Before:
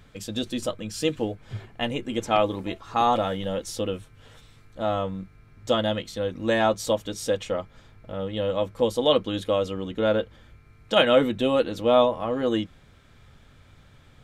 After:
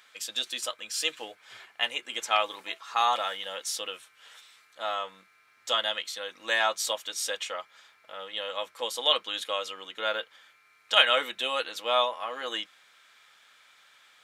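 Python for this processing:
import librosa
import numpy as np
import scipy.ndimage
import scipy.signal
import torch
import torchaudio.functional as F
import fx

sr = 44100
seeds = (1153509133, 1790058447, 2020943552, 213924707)

y = scipy.signal.sosfilt(scipy.signal.butter(2, 1300.0, 'highpass', fs=sr, output='sos'), x)
y = F.gain(torch.from_numpy(y), 4.0).numpy()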